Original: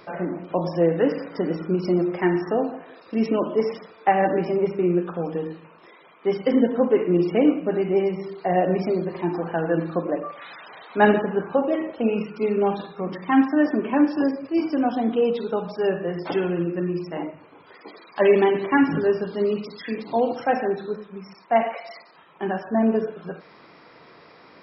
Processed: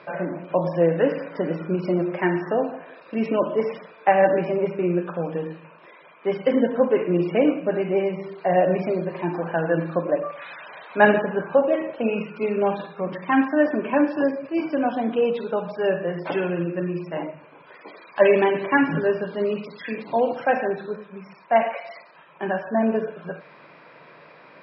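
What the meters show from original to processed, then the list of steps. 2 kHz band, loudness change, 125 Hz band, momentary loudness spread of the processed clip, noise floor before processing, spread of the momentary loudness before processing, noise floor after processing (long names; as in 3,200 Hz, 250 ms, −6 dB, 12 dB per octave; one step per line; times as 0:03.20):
+3.5 dB, 0.0 dB, 0.0 dB, 13 LU, −50 dBFS, 13 LU, −49 dBFS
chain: loudspeaker in its box 110–4,400 Hz, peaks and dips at 150 Hz +8 dB, 580 Hz +9 dB, 990 Hz +5 dB, 1,600 Hz +7 dB, 2,500 Hz +8 dB
level −3 dB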